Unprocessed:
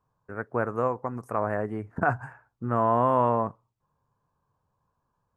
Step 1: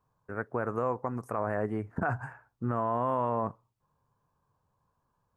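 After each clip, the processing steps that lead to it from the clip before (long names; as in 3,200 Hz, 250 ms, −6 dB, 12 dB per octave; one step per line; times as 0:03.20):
brickwall limiter −18.5 dBFS, peak gain reduction 8.5 dB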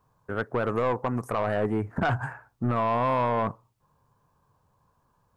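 soft clipping −26.5 dBFS, distortion −11 dB
level +8 dB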